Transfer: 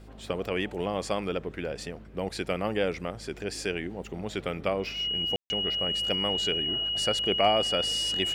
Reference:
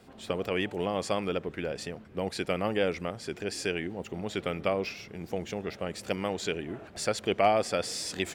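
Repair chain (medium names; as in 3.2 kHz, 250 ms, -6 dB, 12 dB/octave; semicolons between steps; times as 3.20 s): de-hum 52.3 Hz, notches 12; band-stop 2.9 kHz, Q 30; room tone fill 5.36–5.50 s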